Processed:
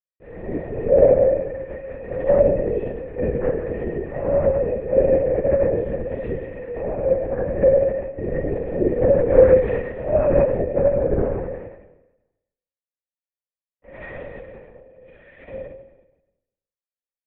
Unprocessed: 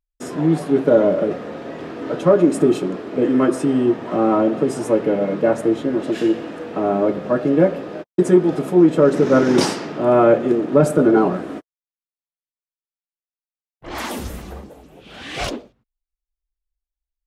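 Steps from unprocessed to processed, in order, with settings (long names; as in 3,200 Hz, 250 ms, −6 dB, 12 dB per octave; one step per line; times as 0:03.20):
Bessel high-pass filter 190 Hz
0:14.57–0:15.49: downward compressor 5 to 1, threshold −40 dBFS, peak gain reduction 16.5 dB
formant resonators in series e
pitch vibrato 0.52 Hz 30 cents
four-comb reverb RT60 1 s, combs from 33 ms, DRR −7 dB
linear-prediction vocoder at 8 kHz whisper
level −1 dB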